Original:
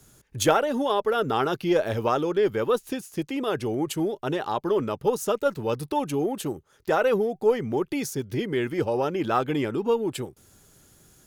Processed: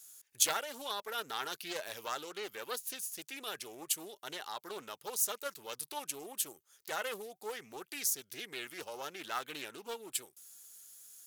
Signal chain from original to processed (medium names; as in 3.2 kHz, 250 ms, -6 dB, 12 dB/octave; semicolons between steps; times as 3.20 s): differentiator; loudspeaker Doppler distortion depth 0.29 ms; trim +3 dB